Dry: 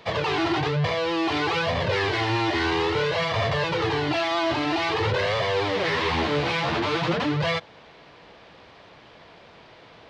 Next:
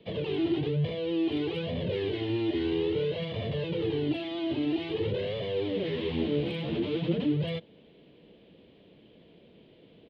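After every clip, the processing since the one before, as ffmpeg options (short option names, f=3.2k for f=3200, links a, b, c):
-filter_complex "[0:a]firequalizer=gain_entry='entry(110,0);entry(190,9);entry(460,4);entry(770,-12);entry(1200,-18);entry(3100,0);entry(5600,-22)':delay=0.05:min_phase=1,acrossover=split=330|1000|2300[a][b][c][d];[d]asoftclip=type=hard:threshold=-29dB[e];[a][b][c][e]amix=inputs=4:normalize=0,volume=-7.5dB"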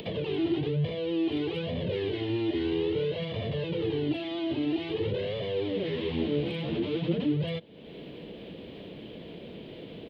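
-af "acompressor=mode=upward:threshold=-30dB:ratio=2.5"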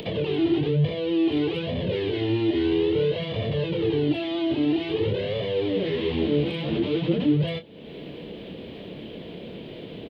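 -filter_complex "[0:a]asplit=2[a][b];[b]adelay=27,volume=-10dB[c];[a][c]amix=inputs=2:normalize=0,volume=4.5dB"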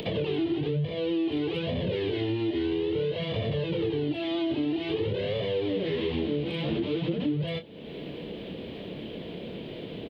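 -af "acompressor=threshold=-25dB:ratio=6"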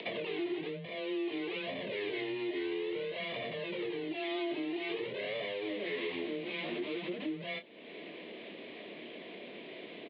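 -af "afreqshift=17,highpass=480,equalizer=f=500:t=q:w=4:g=-9,equalizer=f=840:t=q:w=4:g=-7,equalizer=f=1.4k:t=q:w=4:g=-6,equalizer=f=2.1k:t=q:w=4:g=5,equalizer=f=3.1k:t=q:w=4:g=-6,lowpass=f=3.7k:w=0.5412,lowpass=f=3.7k:w=1.3066"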